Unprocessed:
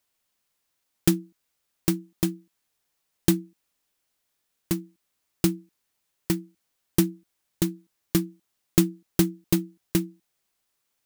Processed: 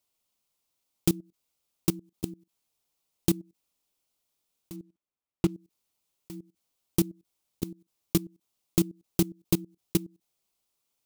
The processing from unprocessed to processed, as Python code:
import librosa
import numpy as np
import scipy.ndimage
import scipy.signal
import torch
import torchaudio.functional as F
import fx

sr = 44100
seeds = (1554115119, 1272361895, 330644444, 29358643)

y = fx.median_filter(x, sr, points=9, at=(4.76, 5.54))
y = fx.peak_eq(y, sr, hz=1700.0, db=-10.5, octaves=0.54)
y = fx.level_steps(y, sr, step_db=20)